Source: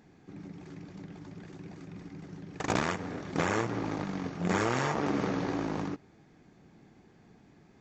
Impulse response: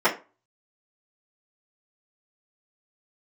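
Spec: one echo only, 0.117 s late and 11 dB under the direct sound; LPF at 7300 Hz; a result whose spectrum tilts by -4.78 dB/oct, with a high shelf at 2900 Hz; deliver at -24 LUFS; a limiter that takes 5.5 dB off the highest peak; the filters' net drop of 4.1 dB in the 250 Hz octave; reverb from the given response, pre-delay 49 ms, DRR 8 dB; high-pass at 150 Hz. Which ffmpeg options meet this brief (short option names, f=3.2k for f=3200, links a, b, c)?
-filter_complex "[0:a]highpass=150,lowpass=7.3k,equalizer=f=250:t=o:g=-4.5,highshelf=f=2.9k:g=-5,alimiter=limit=-23.5dB:level=0:latency=1,aecho=1:1:117:0.282,asplit=2[a][b];[1:a]atrim=start_sample=2205,adelay=49[c];[b][c]afir=irnorm=-1:irlink=0,volume=-26dB[d];[a][d]amix=inputs=2:normalize=0,volume=11.5dB"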